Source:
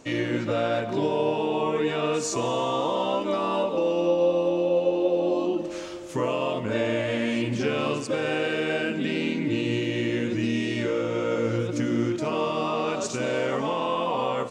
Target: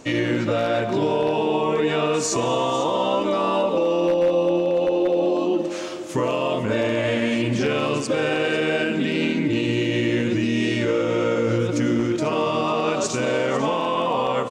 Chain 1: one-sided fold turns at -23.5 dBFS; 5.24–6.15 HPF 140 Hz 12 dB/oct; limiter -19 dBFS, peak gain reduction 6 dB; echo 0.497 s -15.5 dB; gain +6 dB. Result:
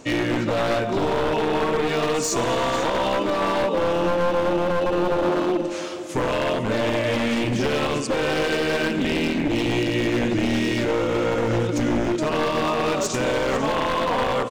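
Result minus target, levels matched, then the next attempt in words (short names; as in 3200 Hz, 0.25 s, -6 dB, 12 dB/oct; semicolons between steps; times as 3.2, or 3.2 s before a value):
one-sided fold: distortion +23 dB
one-sided fold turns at -15.5 dBFS; 5.24–6.15 HPF 140 Hz 12 dB/oct; limiter -19 dBFS, peak gain reduction 5.5 dB; echo 0.497 s -15.5 dB; gain +6 dB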